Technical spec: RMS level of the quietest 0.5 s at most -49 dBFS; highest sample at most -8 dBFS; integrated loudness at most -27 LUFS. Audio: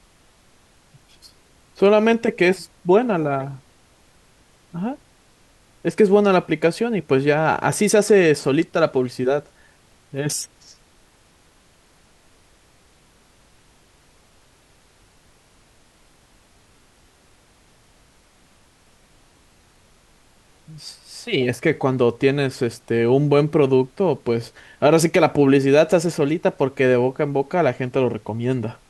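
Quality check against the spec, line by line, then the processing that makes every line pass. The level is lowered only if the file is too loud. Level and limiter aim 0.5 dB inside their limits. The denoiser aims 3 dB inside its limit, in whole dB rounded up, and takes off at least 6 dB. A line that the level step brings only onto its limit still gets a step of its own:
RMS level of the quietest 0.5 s -55 dBFS: pass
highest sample -5.0 dBFS: fail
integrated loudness -19.0 LUFS: fail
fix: trim -8.5 dB

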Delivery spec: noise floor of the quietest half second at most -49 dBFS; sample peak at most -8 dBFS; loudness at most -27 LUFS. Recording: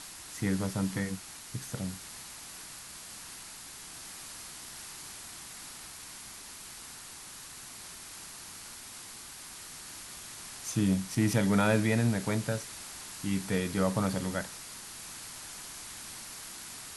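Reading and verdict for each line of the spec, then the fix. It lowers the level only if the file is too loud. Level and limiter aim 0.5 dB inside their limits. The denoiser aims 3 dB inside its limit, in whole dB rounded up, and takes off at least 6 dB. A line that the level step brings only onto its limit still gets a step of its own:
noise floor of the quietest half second -47 dBFS: fail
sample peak -12.5 dBFS: pass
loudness -35.0 LUFS: pass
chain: noise reduction 6 dB, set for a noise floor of -47 dBFS

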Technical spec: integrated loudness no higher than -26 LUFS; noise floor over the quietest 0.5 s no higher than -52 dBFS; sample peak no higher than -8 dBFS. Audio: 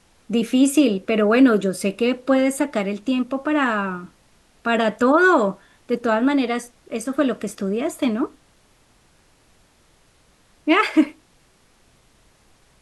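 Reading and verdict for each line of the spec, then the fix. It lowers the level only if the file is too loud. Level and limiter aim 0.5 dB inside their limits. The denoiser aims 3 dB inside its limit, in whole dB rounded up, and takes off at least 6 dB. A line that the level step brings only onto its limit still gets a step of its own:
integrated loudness -20.0 LUFS: fail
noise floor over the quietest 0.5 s -57 dBFS: pass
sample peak -5.0 dBFS: fail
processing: trim -6.5 dB

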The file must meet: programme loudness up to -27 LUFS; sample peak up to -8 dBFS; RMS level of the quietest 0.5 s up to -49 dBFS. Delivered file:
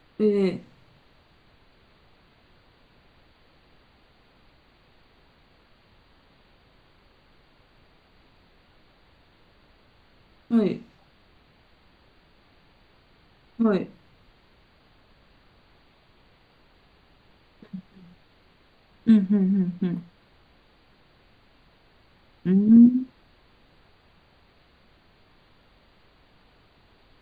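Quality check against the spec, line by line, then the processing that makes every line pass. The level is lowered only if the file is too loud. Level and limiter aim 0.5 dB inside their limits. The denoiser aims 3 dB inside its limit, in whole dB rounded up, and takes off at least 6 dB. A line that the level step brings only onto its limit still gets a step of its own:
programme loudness -22.0 LUFS: fail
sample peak -6.5 dBFS: fail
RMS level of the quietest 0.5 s -59 dBFS: pass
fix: trim -5.5 dB

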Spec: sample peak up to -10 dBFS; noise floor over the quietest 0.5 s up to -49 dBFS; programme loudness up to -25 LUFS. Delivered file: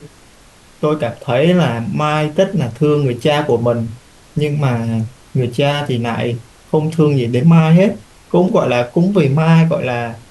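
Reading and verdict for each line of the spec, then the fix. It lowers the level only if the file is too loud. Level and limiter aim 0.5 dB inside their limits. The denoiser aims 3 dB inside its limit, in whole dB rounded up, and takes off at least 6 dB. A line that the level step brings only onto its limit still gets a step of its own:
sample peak -2.0 dBFS: fail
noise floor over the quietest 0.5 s -45 dBFS: fail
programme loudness -15.0 LUFS: fail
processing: trim -10.5 dB

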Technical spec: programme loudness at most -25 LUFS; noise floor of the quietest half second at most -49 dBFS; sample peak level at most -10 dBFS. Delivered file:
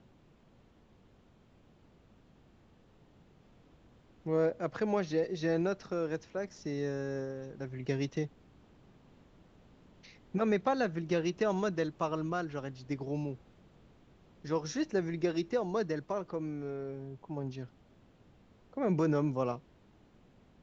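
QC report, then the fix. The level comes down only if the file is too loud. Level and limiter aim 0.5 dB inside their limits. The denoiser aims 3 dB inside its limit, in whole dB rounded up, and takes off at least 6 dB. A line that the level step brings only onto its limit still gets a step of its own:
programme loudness -34.5 LUFS: pass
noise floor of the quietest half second -63 dBFS: pass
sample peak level -18.5 dBFS: pass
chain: none needed

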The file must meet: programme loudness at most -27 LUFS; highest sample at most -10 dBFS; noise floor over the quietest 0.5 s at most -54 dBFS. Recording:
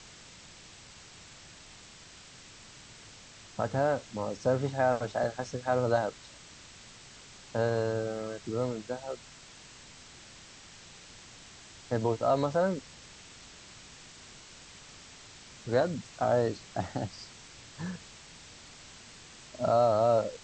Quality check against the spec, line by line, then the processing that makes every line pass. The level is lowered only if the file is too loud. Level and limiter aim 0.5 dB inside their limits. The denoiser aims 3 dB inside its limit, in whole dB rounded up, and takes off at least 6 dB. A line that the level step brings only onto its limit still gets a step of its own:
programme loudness -30.5 LUFS: pass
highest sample -14.0 dBFS: pass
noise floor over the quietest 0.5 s -52 dBFS: fail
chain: noise reduction 6 dB, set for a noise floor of -52 dBFS

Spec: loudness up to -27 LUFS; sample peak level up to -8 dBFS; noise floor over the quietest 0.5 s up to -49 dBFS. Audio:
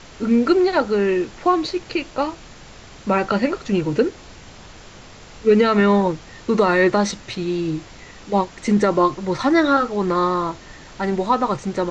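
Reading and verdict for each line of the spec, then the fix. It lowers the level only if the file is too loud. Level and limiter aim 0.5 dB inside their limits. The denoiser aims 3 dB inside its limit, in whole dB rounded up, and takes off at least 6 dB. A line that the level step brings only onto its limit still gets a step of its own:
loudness -20.0 LUFS: fail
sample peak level -5.5 dBFS: fail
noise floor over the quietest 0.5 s -42 dBFS: fail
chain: trim -7.5 dB

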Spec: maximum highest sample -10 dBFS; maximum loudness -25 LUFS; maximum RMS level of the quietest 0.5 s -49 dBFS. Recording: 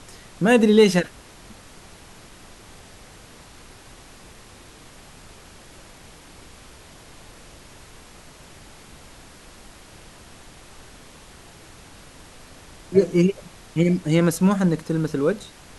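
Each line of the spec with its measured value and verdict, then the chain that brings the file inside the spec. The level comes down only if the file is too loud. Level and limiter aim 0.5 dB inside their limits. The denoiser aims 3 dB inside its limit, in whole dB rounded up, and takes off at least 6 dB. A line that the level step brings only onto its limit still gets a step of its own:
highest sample -4.0 dBFS: fail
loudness -20.0 LUFS: fail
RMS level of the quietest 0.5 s -46 dBFS: fail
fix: trim -5.5 dB; peak limiter -10.5 dBFS

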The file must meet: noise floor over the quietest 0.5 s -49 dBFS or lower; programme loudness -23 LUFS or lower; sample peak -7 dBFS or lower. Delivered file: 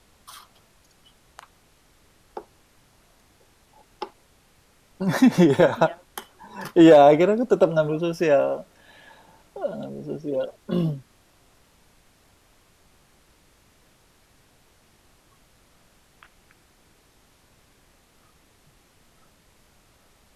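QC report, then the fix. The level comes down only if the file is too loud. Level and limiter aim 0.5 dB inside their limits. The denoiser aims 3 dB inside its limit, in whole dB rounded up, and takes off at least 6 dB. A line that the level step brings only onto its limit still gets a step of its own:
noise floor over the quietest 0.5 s -59 dBFS: pass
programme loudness -20.0 LUFS: fail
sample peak -5.0 dBFS: fail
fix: trim -3.5 dB

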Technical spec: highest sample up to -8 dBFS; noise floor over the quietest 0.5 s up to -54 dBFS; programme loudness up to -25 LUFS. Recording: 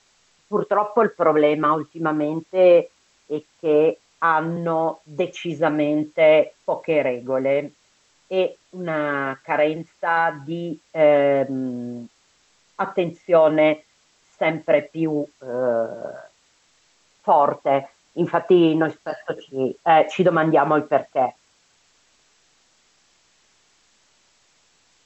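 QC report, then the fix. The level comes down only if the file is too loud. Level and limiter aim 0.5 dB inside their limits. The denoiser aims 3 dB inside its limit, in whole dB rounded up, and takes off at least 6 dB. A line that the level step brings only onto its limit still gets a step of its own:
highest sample -6.0 dBFS: fail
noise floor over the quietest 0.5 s -61 dBFS: pass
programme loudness -21.0 LUFS: fail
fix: trim -4.5 dB

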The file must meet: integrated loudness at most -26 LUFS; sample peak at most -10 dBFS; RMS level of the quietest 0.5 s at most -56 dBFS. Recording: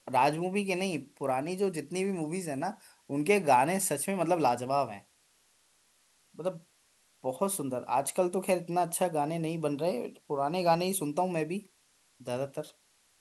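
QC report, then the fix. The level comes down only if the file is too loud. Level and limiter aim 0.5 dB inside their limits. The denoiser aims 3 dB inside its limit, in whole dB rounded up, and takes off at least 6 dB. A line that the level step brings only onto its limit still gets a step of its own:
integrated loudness -30.5 LUFS: pass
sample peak -11.5 dBFS: pass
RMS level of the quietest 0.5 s -68 dBFS: pass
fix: none needed

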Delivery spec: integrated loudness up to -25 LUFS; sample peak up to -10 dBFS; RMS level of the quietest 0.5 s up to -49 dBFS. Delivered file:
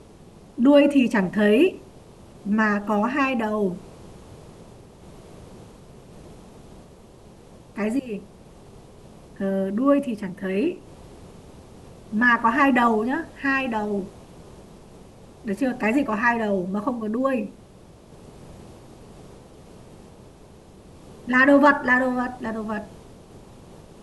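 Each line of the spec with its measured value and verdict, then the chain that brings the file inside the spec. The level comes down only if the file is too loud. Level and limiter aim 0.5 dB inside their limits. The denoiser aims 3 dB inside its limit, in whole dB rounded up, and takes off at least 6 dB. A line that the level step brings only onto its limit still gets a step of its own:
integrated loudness -21.5 LUFS: fail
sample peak -5.0 dBFS: fail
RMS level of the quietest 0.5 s -48 dBFS: fail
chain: trim -4 dB; peak limiter -10.5 dBFS

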